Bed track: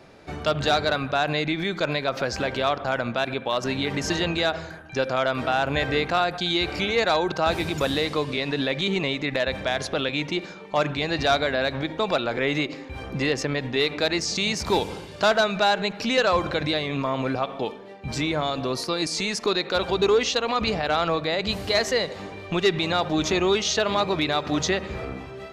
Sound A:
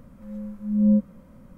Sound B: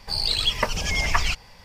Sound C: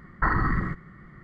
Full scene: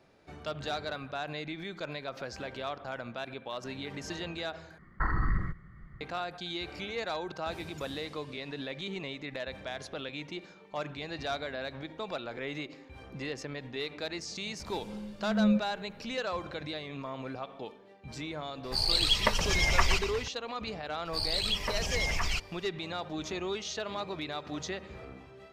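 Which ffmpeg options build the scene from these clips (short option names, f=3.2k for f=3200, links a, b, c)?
-filter_complex "[2:a]asplit=2[a][b];[0:a]volume=-13.5dB[c];[3:a]asubboost=boost=11:cutoff=120[d];[1:a]equalizer=f=620:t=o:w=0.77:g=5[e];[a]asplit=8[f][g][h][i][j][k][l][m];[g]adelay=120,afreqshift=-38,volume=-11dB[n];[h]adelay=240,afreqshift=-76,volume=-15.6dB[o];[i]adelay=360,afreqshift=-114,volume=-20.2dB[p];[j]adelay=480,afreqshift=-152,volume=-24.7dB[q];[k]adelay=600,afreqshift=-190,volume=-29.3dB[r];[l]adelay=720,afreqshift=-228,volume=-33.9dB[s];[m]adelay=840,afreqshift=-266,volume=-38.5dB[t];[f][n][o][p][q][r][s][t]amix=inputs=8:normalize=0[u];[b]alimiter=limit=-14dB:level=0:latency=1:release=12[v];[c]asplit=2[w][x];[w]atrim=end=4.784[y];[d]atrim=end=1.23,asetpts=PTS-STARTPTS,volume=-8.5dB[z];[x]atrim=start=6.006[aa];[e]atrim=end=1.57,asetpts=PTS-STARTPTS,volume=-7.5dB,afade=t=in:d=0.004:c=hsin,afade=t=out:st=1.566:d=0.004:c=hsin,adelay=14590[ab];[u]atrim=end=1.64,asetpts=PTS-STARTPTS,volume=-3.5dB,afade=t=in:d=0.004:c=hsin,afade=t=out:st=1.636:d=0.004:c=hsin,adelay=18640[ac];[v]atrim=end=1.64,asetpts=PTS-STARTPTS,volume=-6.5dB,afade=t=in:d=0.004:c=hsin,afade=t=out:st=1.636:d=0.004:c=hsin,adelay=21050[ad];[y][z]acrossfade=d=0.004:c1=hsin:c2=hsin[ae];[ae][aa]acrossfade=d=0.004:c1=hsin:c2=hsin[af];[af][ab][ac][ad]amix=inputs=4:normalize=0"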